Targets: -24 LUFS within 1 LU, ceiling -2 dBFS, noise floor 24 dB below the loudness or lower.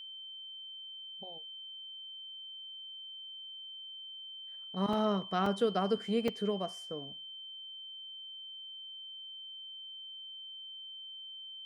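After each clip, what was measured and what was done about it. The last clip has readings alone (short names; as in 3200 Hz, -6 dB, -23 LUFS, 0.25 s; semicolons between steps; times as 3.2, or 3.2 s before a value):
dropouts 3; longest dropout 3.4 ms; steady tone 3100 Hz; tone level -44 dBFS; loudness -38.5 LUFS; peak -18.0 dBFS; loudness target -24.0 LUFS
-> interpolate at 4.93/5.46/6.28, 3.4 ms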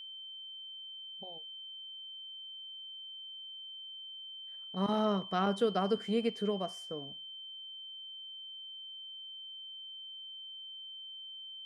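dropouts 0; steady tone 3100 Hz; tone level -44 dBFS
-> notch 3100 Hz, Q 30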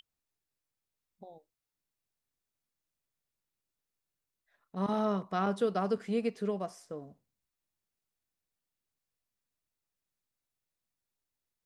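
steady tone none; loudness -33.0 LUFS; peak -18.5 dBFS; loudness target -24.0 LUFS
-> gain +9 dB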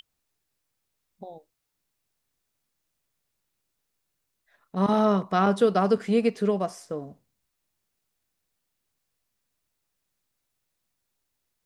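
loudness -24.0 LUFS; peak -9.5 dBFS; noise floor -80 dBFS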